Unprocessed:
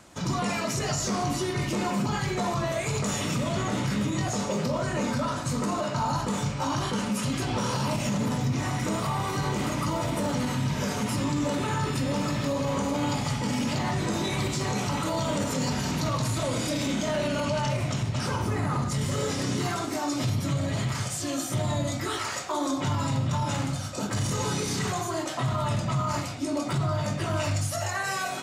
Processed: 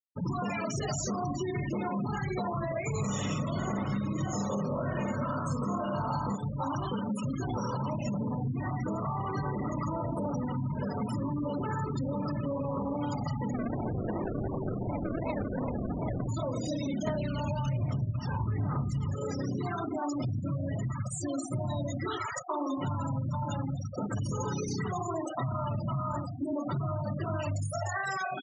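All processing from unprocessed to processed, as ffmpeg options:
-filter_complex "[0:a]asettb=1/sr,asplit=3[s0][s1][s2];[s0]atrim=end=2.924[s3];[s1]atrim=start=2.92:end=6.36,asetpts=PTS-STARTPTS,afade=t=in:d=0.004:c=qsin,afade=t=out:st=3.436:d=0.004:c=qsin,aeval=exprs='val(0)+0.00562*sin(2*PI*1100*n/s)':c=same,aecho=1:1:20|50|95|162.5|263.8:0.794|0.631|0.501|0.398|0.316,atrim=end_sample=151704[s4];[s2]atrim=start=6.356[s5];[s3][s4]acrossfade=d=0.004:c1=hsin:c2=qsin[s6];[s6][s5]acrossfade=d=0.004:c1=qsin:c2=hsin,asettb=1/sr,asplit=3[s7][s8][s9];[s7]atrim=end=13.534[s10];[s8]atrim=start=13.53:end=16.29,asetpts=PTS-STARTPTS,afade=t=in:d=0.004:c=qsin,afade=t=out:st=2.756:d=0.004:c=qsin,equalizer=f=150:w=3.7:g=-5.5,acrusher=samples=39:mix=1:aa=0.000001:lfo=1:lforange=23.4:lforate=2.7[s11];[s9]atrim=start=16.286[s12];[s10][s11]acrossfade=d=0.004:c1=hsin:c2=qsin[s13];[s13][s12]acrossfade=d=0.004:c1=qsin:c2=hsin,asettb=1/sr,asplit=3[s14][s15][s16];[s14]atrim=end=17.074[s17];[s15]atrim=start=17.07:end=19.15,asetpts=PTS-STARTPTS,afade=t=in:d=0.004:c=qsin,afade=t=out:st=2.076:d=0.004:c=qsin,aphaser=in_gain=1:out_gain=1:delay=1.2:decay=0.51:speed=1.2:type=sinusoidal,equalizer=f=94:w=0.6:g=6.5,asplit=2[s18][s19];[s19]adelay=305,lowpass=f=4400:p=1,volume=0.224,asplit=2[s20][s21];[s21]adelay=305,lowpass=f=4400:p=1,volume=0.4,asplit=2[s22][s23];[s23]adelay=305,lowpass=f=4400:p=1,volume=0.4,asplit=2[s24][s25];[s25]adelay=305,lowpass=f=4400:p=1,volume=0.4[s26];[s18][s20][s22][s24][s26]amix=inputs=5:normalize=0,atrim=end_sample=91728[s27];[s16]atrim=start=19.146[s28];[s17][s27]acrossfade=d=0.004:c1=hsin:c2=qsin[s29];[s29][s28]acrossfade=d=0.004:c1=qsin:c2=hsin,afftfilt=real='re*gte(hypot(re,im),0.0501)':imag='im*gte(hypot(re,im),0.0501)':win_size=1024:overlap=0.75,acompressor=threshold=0.0355:ratio=6"

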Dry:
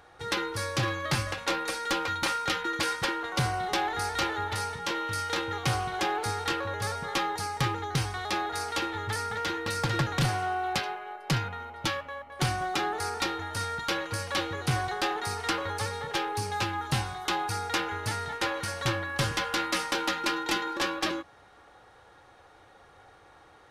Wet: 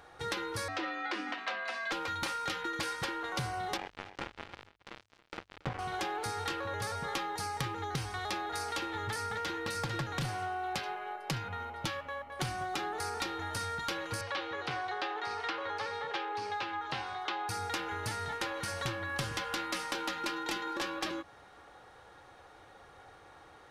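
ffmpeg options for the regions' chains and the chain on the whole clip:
-filter_complex "[0:a]asettb=1/sr,asplit=3[s0][s1][s2];[s0]atrim=end=0.684[s3];[s1]atrim=start=0.68:end=1.92,asetpts=PTS-STARTPTS,afade=t=in:d=0.004:c=qsin,afade=t=out:st=1.236:d=0.004:c=qsin,lowpass=3000,equalizer=f=190:w=0.48:g=-6,afreqshift=200[s4];[s2]atrim=start=1.916[s5];[s3][s4]acrossfade=d=0.004:c1=hsin:c2=qsin[s6];[s6][s5]acrossfade=d=0.004:c1=qsin:c2=hsin,asettb=1/sr,asplit=3[s7][s8][s9];[s7]atrim=end=3.774[s10];[s8]atrim=start=3.77:end=5.79,asetpts=PTS-STARTPTS,afade=t=in:d=0.004:c=qsin,afade=t=out:st=2.016:d=0.004:c=qsin,lowpass=1200,acrusher=bits=3:mix=0:aa=0.5,aecho=1:1:277:0.126,atrim=end_sample=89082[s11];[s9]atrim=start=5.786[s12];[s10][s11]acrossfade=d=0.004:c1=hsin:c2=qsin[s13];[s13][s12]acrossfade=d=0.004:c1=qsin:c2=hsin,asettb=1/sr,asplit=3[s14][s15][s16];[s14]atrim=end=14.214[s17];[s15]atrim=start=14.21:end=17.49,asetpts=PTS-STARTPTS,afade=t=in:d=0.004:c=qsin,afade=t=out:st=3.276:d=0.004:c=qsin,acrossover=split=6100[s18][s19];[s19]acompressor=threshold=0.00355:ratio=4:attack=1:release=60[s20];[s18][s20]amix=inputs=2:normalize=0,acrossover=split=320 5000:gain=0.178 1 0.141[s21][s22][s23];[s21][s22][s23]amix=inputs=3:normalize=0[s24];[s16]atrim=start=17.486[s25];[s17][s24]acrossfade=d=0.004:c1=hsin:c2=qsin[s26];[s26][s25]acrossfade=d=0.004:c1=qsin:c2=hsin,bandreject=f=50:t=h:w=6,bandreject=f=100:t=h:w=6,acompressor=threshold=0.0224:ratio=6"

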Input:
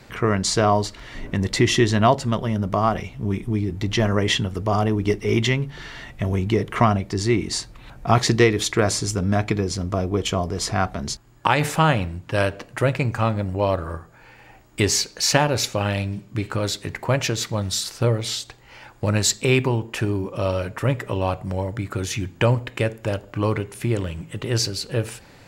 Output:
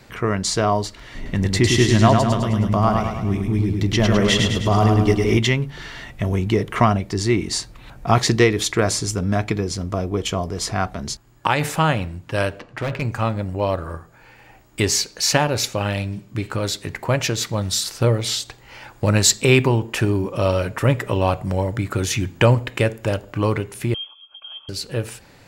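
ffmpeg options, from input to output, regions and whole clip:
-filter_complex "[0:a]asettb=1/sr,asplit=3[s0][s1][s2];[s0]atrim=end=1.154[s3];[s1]atrim=start=1.15:end=5.38,asetpts=PTS-STARTPTS,afade=t=in:d=0.004:c=qsin,afade=t=out:st=4.226:d=0.004:c=qsin,bass=f=250:g=3,treble=f=4000:g=1,aecho=1:1:104|208|312|416|520|624|728:0.631|0.328|0.171|0.0887|0.0461|0.024|0.0125,atrim=end_sample=186543[s4];[s2]atrim=start=5.376[s5];[s3][s4]acrossfade=d=0.004:c1=hsin:c2=qsin[s6];[s6][s5]acrossfade=d=0.004:c1=qsin:c2=hsin,asettb=1/sr,asplit=3[s7][s8][s9];[s7]atrim=end=12.594[s10];[s8]atrim=start=12.59:end=13.02,asetpts=PTS-STARTPTS,afade=t=in:d=0.004:c=qsin,afade=t=out:st=0.426:d=0.004:c=qsin,lowpass=4300,bandreject=f=81.07:t=h:w=4,bandreject=f=162.14:t=h:w=4,bandreject=f=243.21:t=h:w=4,bandreject=f=324.28:t=h:w=4,bandreject=f=405.35:t=h:w=4,bandreject=f=486.42:t=h:w=4,bandreject=f=567.49:t=h:w=4,bandreject=f=648.56:t=h:w=4,bandreject=f=729.63:t=h:w=4,bandreject=f=810.7:t=h:w=4,bandreject=f=891.77:t=h:w=4,bandreject=f=972.84:t=h:w=4,bandreject=f=1053.91:t=h:w=4,bandreject=f=1134.98:t=h:w=4,bandreject=f=1216.05:t=h:w=4,bandreject=f=1297.12:t=h:w=4,bandreject=f=1378.19:t=h:w=4,bandreject=f=1459.26:t=h:w=4,bandreject=f=1540.33:t=h:w=4,bandreject=f=1621.4:t=h:w=4,asoftclip=type=hard:threshold=0.1[s11];[s9]atrim=start=13.016[s12];[s10][s11]acrossfade=d=0.004:c1=hsin:c2=qsin[s13];[s13][s12]acrossfade=d=0.004:c1=qsin:c2=hsin,asettb=1/sr,asplit=3[s14][s15][s16];[s14]atrim=end=23.944[s17];[s15]atrim=start=23.94:end=24.69,asetpts=PTS-STARTPTS,afade=t=in:d=0.004:c=qsin,afade=t=out:st=0.746:d=0.004:c=qsin,asplit=3[s18][s19][s20];[s18]bandpass=f=300:t=q:w=8,volume=1[s21];[s19]bandpass=f=870:t=q:w=8,volume=0.501[s22];[s20]bandpass=f=2240:t=q:w=8,volume=0.355[s23];[s21][s22][s23]amix=inputs=3:normalize=0,aecho=1:1:3.8:0.47,atrim=end_sample=33075,lowpass=f=3000:t=q:w=0.5098,lowpass=f=3000:t=q:w=0.6013,lowpass=f=3000:t=q:w=0.9,lowpass=f=3000:t=q:w=2.563,afreqshift=-3500[s24];[s16]atrim=start=24.686[s25];[s17][s24]acrossfade=d=0.004:c1=hsin:c2=qsin[s26];[s26][s25]acrossfade=d=0.004:c1=qsin:c2=hsin,lowpass=f=3600:p=1,aemphasis=mode=production:type=50kf,dynaudnorm=f=290:g=17:m=3.76,volume=0.891"

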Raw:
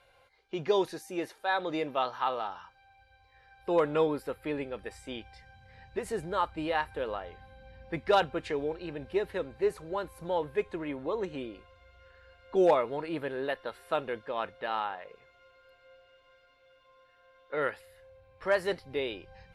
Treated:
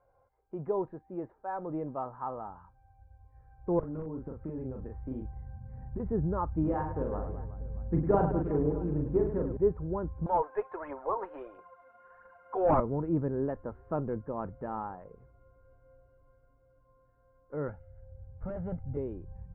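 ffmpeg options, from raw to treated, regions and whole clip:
-filter_complex "[0:a]asettb=1/sr,asplit=3[s0][s1][s2];[s0]atrim=end=3.794[s3];[s1]atrim=start=3.79:end=6,asetpts=PTS-STARTPTS,afade=t=in:d=0.004:c=qsin,afade=t=out:st=2.206:d=0.004:c=qsin,aeval=exprs='(mod(7.08*val(0)+1,2)-1)/7.08':c=same,acompressor=threshold=0.0126:ratio=10:attack=3.2:release=140:knee=1:detection=peak,asplit=2[s4][s5];[s5]adelay=38,volume=0.668[s6];[s4][s6]amix=inputs=2:normalize=0,atrim=end_sample=97461[s7];[s2]atrim=start=5.996[s8];[s3][s7]acrossfade=d=0.004:c1=hsin:c2=qsin[s9];[s9][s8]acrossfade=d=0.004:c1=qsin:c2=hsin,asettb=1/sr,asplit=3[s10][s11][s12];[s10]atrim=end=6.634[s13];[s11]atrim=start=6.63:end=9.57,asetpts=PTS-STARTPTS,afade=t=in:d=0.004:c=qsin,afade=t=out:st=2.936:d=0.004:c=qsin,tremolo=f=110:d=0.333,acrusher=bits=3:mode=log:mix=0:aa=0.000001,aecho=1:1:40|104|206.4|370.2|632.4:0.631|0.398|0.251|0.158|0.1,atrim=end_sample=129654[s14];[s12]atrim=start=9.566[s15];[s13][s14]acrossfade=d=0.004:c1=hsin:c2=qsin[s16];[s16][s15]acrossfade=d=0.004:c1=qsin:c2=hsin,asettb=1/sr,asplit=3[s17][s18][s19];[s17]atrim=end=10.264[s20];[s18]atrim=start=10.26:end=12.8,asetpts=PTS-STARTPTS,afade=t=in:d=0.004:c=qsin,afade=t=out:st=2.536:d=0.004:c=qsin,highpass=f=700:w=0.5412,highpass=f=700:w=1.3066,aphaser=in_gain=1:out_gain=1:delay=4.6:decay=0.47:speed=1.5:type=triangular,aeval=exprs='0.15*sin(PI/2*2.51*val(0)/0.15)':c=same[s21];[s19]atrim=start=12.796[s22];[s20][s21]acrossfade=d=0.004:c1=hsin:c2=qsin[s23];[s23][s22]acrossfade=d=0.004:c1=qsin:c2=hsin,asettb=1/sr,asplit=3[s24][s25][s26];[s24]atrim=end=17.684[s27];[s25]atrim=start=17.68:end=18.97,asetpts=PTS-STARTPTS,afade=t=in:d=0.004:c=qsin,afade=t=out:st=1.286:d=0.004:c=qsin,aecho=1:1:1.4:0.8,atrim=end_sample=56889,asoftclip=type=hard:threshold=0.0355[s28];[s26]atrim=start=18.966[s29];[s27][s28]acrossfade=d=0.004:c1=hsin:c2=qsin[s30];[s30][s29]acrossfade=d=0.004:c1=qsin:c2=hsin,dynaudnorm=f=340:g=21:m=1.5,lowpass=f=1100:w=0.5412,lowpass=f=1100:w=1.3066,asubboost=boost=6.5:cutoff=230,volume=0.668"

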